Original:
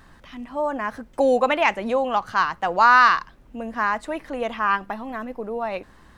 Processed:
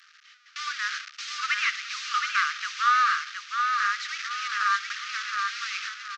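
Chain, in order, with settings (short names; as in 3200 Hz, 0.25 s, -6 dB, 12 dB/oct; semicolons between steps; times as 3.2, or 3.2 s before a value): delta modulation 32 kbps, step -26 dBFS; gate with hold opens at -25 dBFS; Chebyshev high-pass 1200 Hz, order 8; vocal rider within 3 dB 0.5 s; on a send: feedback echo 0.718 s, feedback 34%, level -4.5 dB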